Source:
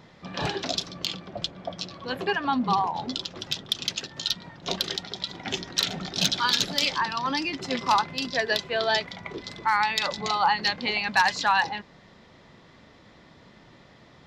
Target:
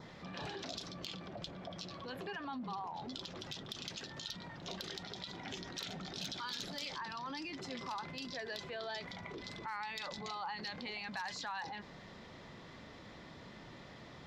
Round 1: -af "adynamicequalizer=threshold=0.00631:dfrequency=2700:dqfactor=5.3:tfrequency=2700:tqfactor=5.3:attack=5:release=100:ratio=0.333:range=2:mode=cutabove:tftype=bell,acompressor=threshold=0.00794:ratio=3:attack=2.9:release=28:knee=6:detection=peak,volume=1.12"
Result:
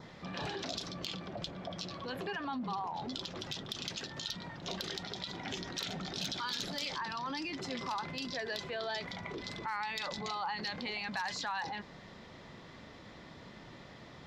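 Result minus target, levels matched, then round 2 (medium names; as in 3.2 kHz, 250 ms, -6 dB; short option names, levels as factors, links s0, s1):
compression: peak gain reduction -4.5 dB
-af "adynamicequalizer=threshold=0.00631:dfrequency=2700:dqfactor=5.3:tfrequency=2700:tqfactor=5.3:attack=5:release=100:ratio=0.333:range=2:mode=cutabove:tftype=bell,acompressor=threshold=0.00355:ratio=3:attack=2.9:release=28:knee=6:detection=peak,volume=1.12"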